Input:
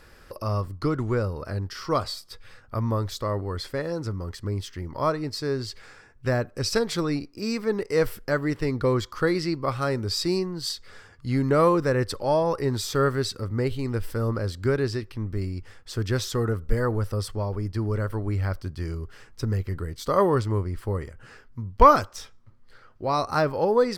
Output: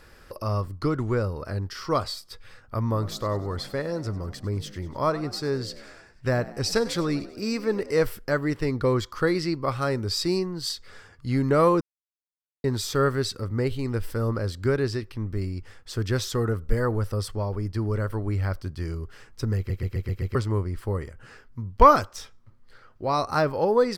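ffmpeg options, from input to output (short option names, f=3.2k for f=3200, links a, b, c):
-filter_complex "[0:a]asplit=3[a][b][c];[a]afade=t=out:st=2.93:d=0.02[d];[b]asplit=6[e][f][g][h][i][j];[f]adelay=97,afreqshift=50,volume=-17.5dB[k];[g]adelay=194,afreqshift=100,volume=-22.1dB[l];[h]adelay=291,afreqshift=150,volume=-26.7dB[m];[i]adelay=388,afreqshift=200,volume=-31.2dB[n];[j]adelay=485,afreqshift=250,volume=-35.8dB[o];[e][k][l][m][n][o]amix=inputs=6:normalize=0,afade=t=in:st=2.93:d=0.02,afade=t=out:st=8.03:d=0.02[p];[c]afade=t=in:st=8.03:d=0.02[q];[d][p][q]amix=inputs=3:normalize=0,asplit=9[r][s][t][u][v][w][x][y][z];[r]atrim=end=11.81,asetpts=PTS-STARTPTS,afade=t=out:st=11.806:d=0.004:c=hsin[aa];[s]atrim=start=11.81:end=12.64,asetpts=PTS-STARTPTS,volume=0[ab];[t]atrim=start=12.64:end=19.702,asetpts=PTS-STARTPTS,afade=t=in:d=0.004:c=hsin[ac];[u]atrim=start=19.568:end=19.702[ad];[v]atrim=start=19.568:end=19.702[ae];[w]atrim=start=19.568:end=19.702[af];[x]atrim=start=19.568:end=19.702[ag];[y]atrim=start=19.568:end=19.702[ah];[z]atrim=start=20.348[ai];[aa][ab][ac]concat=n=3:v=0:a=1[aj];[aj][ad]acrossfade=d=0.004:c1=hsin:c2=hsin[ak];[ak][ae]acrossfade=d=0.004:c1=hsin:c2=hsin[al];[al][af]acrossfade=d=0.004:c1=hsin:c2=hsin[am];[am][ag]acrossfade=d=0.004:c1=hsin:c2=hsin[an];[an][ah]acrossfade=d=0.004:c1=hsin:c2=hsin[ao];[ao][ai]acrossfade=d=0.004:c1=hsin:c2=hsin"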